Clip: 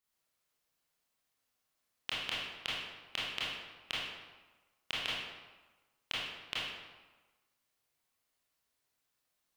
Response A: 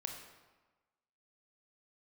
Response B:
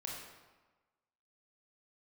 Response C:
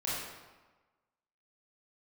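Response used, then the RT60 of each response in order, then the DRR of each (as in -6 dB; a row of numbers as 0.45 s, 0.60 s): C; 1.3 s, 1.3 s, 1.3 s; 2.5 dB, -3.0 dB, -8.5 dB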